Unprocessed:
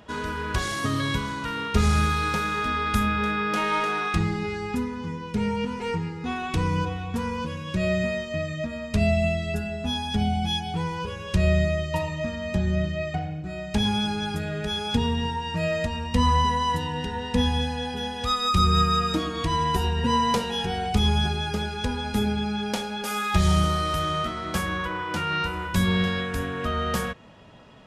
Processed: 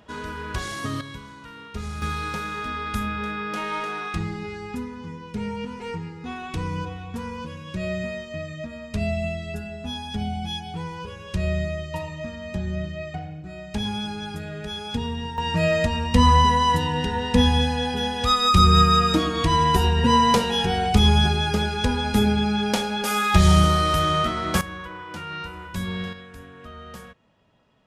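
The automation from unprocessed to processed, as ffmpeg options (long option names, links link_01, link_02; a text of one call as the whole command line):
ffmpeg -i in.wav -af "asetnsamples=nb_out_samples=441:pad=0,asendcmd='1.01 volume volume -12dB;2.02 volume volume -4dB;15.38 volume volume 5dB;24.61 volume volume -7dB;26.13 volume volume -14dB',volume=-3dB" out.wav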